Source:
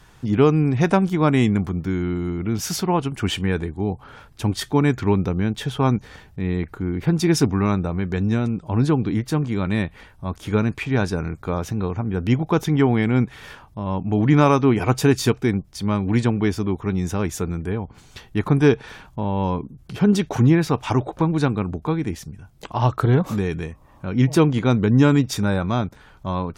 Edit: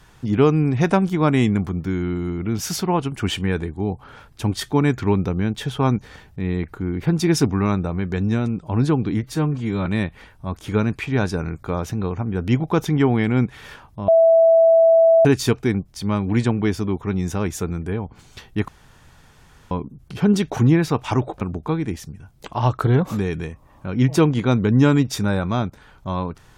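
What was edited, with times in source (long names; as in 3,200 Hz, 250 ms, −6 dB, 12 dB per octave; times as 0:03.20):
0:09.23–0:09.65: time-stretch 1.5×
0:13.87–0:15.04: beep over 658 Hz −9.5 dBFS
0:18.47–0:19.50: fill with room tone
0:21.20–0:21.60: remove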